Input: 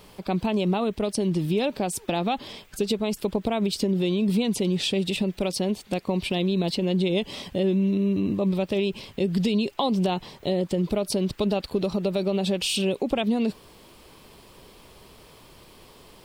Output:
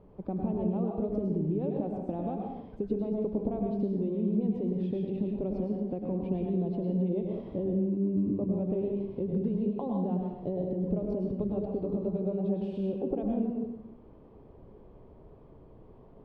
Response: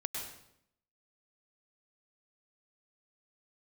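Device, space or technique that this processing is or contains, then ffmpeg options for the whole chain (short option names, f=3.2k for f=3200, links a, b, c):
television next door: -filter_complex "[0:a]acompressor=threshold=-25dB:ratio=6,lowpass=560[a];[1:a]atrim=start_sample=2205[b];[a][b]afir=irnorm=-1:irlink=0,volume=-1.5dB"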